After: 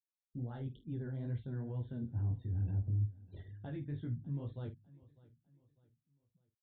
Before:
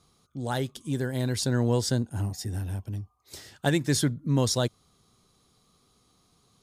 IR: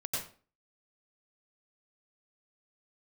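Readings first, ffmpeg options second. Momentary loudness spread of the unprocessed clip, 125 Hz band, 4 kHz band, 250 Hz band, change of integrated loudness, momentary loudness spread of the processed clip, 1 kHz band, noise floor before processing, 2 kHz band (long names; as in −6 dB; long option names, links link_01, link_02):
13 LU, −8.0 dB, below −30 dB, −15.0 dB, −11.5 dB, 12 LU, below −20 dB, −67 dBFS, below −20 dB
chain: -filter_complex "[0:a]flanger=delay=17:depth=5.2:speed=2.2,afftfilt=real='re*gte(hypot(re,im),0.00447)':imag='im*gte(hypot(re,im),0.00447)':win_size=1024:overlap=0.75,areverse,acompressor=threshold=-38dB:ratio=20,areverse,alimiter=level_in=14.5dB:limit=-24dB:level=0:latency=1:release=262,volume=-14.5dB,aemphasis=mode=reproduction:type=riaa,asplit=2[link_01][link_02];[link_02]adelay=48,volume=-12dB[link_03];[link_01][link_03]amix=inputs=2:normalize=0,asplit=2[link_04][link_05];[link_05]aecho=0:1:600|1200|1800:0.0841|0.0328|0.0128[link_06];[link_04][link_06]amix=inputs=2:normalize=0,aresample=8000,aresample=44100,volume=-2dB"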